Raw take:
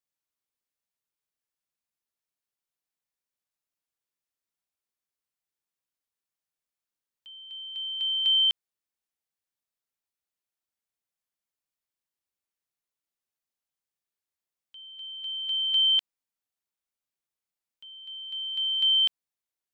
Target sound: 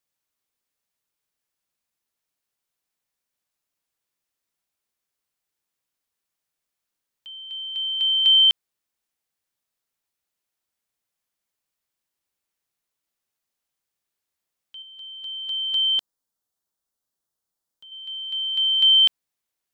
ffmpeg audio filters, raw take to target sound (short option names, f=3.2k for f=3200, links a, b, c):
-filter_complex "[0:a]asettb=1/sr,asplit=3[a][b][c];[a]atrim=end=14.824[d];[b]atrim=start=14.82:end=17.92,asetpts=PTS-STARTPTS,afade=t=in:d=0.004:c=qsin,afade=t=out:st=3.096:d=0.004:c=qsin,equalizer=f=2.4k:t=o:w=0.74:g=-12.5[e];[c]atrim=start=17.916[f];[d][e]acrossfade=d=0.004:c1=hsin:c2=qsin[g];[g][f]acrossfade=d=0.004:c1=qsin:c2=hsin,volume=7dB"